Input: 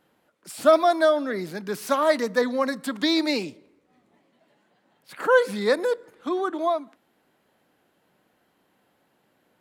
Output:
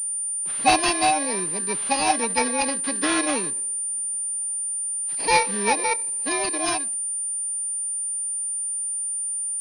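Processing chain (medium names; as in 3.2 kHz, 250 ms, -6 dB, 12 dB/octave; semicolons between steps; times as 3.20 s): bit-reversed sample order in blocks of 32 samples; formant shift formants +4 st; class-D stage that switches slowly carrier 9.2 kHz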